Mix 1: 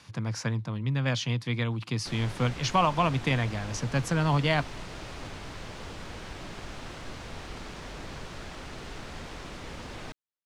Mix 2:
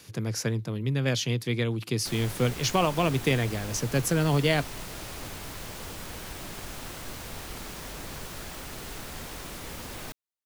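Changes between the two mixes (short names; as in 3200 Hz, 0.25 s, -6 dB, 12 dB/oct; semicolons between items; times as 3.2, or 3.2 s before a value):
speech: add fifteen-band EQ 400 Hz +10 dB, 1000 Hz -7 dB, 10000 Hz -4 dB; master: remove air absorption 100 m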